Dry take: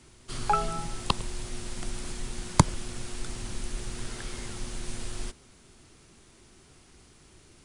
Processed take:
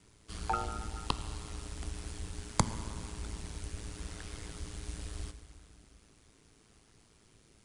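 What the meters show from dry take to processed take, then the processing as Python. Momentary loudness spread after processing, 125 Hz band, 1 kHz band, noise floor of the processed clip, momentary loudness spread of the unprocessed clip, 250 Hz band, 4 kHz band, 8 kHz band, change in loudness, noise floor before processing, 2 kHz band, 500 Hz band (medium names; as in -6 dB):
11 LU, -6.5 dB, -7.5 dB, -64 dBFS, 12 LU, -7.5 dB, -7.0 dB, -6.5 dB, -7.0 dB, -57 dBFS, -7.0 dB, -7.5 dB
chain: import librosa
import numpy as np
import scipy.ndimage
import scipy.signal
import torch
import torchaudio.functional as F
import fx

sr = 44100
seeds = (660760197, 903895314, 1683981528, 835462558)

y = fx.rev_plate(x, sr, seeds[0], rt60_s=2.9, hf_ratio=0.85, predelay_ms=0, drr_db=9.5)
y = y * np.sin(2.0 * np.pi * 55.0 * np.arange(len(y)) / sr)
y = F.gain(torch.from_numpy(y), -5.0).numpy()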